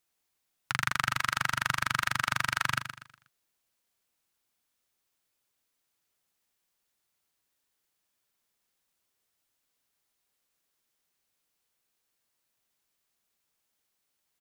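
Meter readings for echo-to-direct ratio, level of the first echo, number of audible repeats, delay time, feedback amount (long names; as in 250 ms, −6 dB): −9.5 dB, −10.0 dB, 3, 121 ms, 35%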